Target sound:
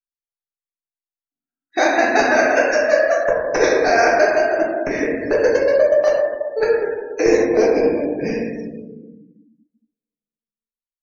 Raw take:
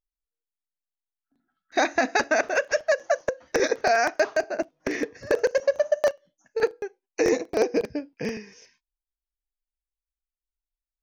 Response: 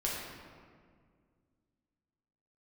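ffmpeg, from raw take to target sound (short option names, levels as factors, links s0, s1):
-filter_complex "[0:a]acrusher=bits=6:mode=log:mix=0:aa=0.000001,asettb=1/sr,asplit=3[s0][s1][s2];[s0]atrim=end=3.194[s3];[s1]atrim=start=3.19:end=3.71,asetpts=PTS-STARTPTS,afade=t=in:d=0.004:c=qsin,afade=t=out:st=0.516:d=0.004:c=qsin,equalizer=f=940:w=1.8:g=5.5[s4];[s2]atrim=start=3.706[s5];[s3][s4]acrossfade=d=0.004:c1=hsin:c2=qsin[s6];[s6][s5]acrossfade=d=0.004:c1=qsin:c2=hsin[s7];[1:a]atrim=start_sample=2205[s8];[s7][s8]afir=irnorm=-1:irlink=0,afftdn=nr=30:nf=-38,volume=1.33"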